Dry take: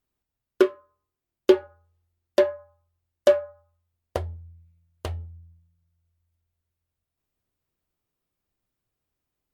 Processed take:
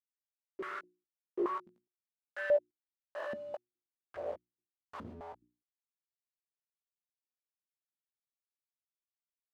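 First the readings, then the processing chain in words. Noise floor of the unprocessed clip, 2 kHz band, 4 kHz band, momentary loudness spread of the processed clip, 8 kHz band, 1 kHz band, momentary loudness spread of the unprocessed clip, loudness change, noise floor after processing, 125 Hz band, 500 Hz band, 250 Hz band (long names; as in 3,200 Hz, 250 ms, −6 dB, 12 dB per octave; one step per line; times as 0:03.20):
below −85 dBFS, −5.0 dB, −20.0 dB, 19 LU, below −20 dB, −4.5 dB, 17 LU, −14.0 dB, below −85 dBFS, −22.0 dB, −13.0 dB, −15.5 dB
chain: spectrum averaged block by block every 200 ms
log-companded quantiser 2 bits
mains-hum notches 60/120/180/240/300/360 Hz
double-tracking delay 17 ms −4 dB
band-pass on a step sequencer 4.8 Hz 220–2,100 Hz
level −2 dB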